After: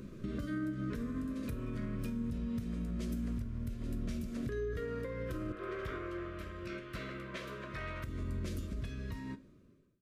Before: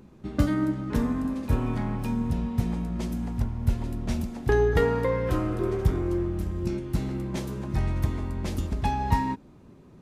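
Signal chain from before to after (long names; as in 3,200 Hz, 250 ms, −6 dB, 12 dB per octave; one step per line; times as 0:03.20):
fade-out on the ending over 2.12 s
0:05.52–0:08.04: three-way crossover with the lows and the highs turned down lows −21 dB, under 570 Hz, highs −18 dB, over 3,500 Hz
downward compressor 16 to 1, threshold −36 dBFS, peak gain reduction 20.5 dB
brickwall limiter −33.5 dBFS, peak gain reduction 8.5 dB
Butterworth band-reject 830 Hz, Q 1.8
tuned comb filter 780 Hz, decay 0.18 s, harmonics all, mix 60%
convolution reverb RT60 0.35 s, pre-delay 6 ms, DRR 13 dB
level +11 dB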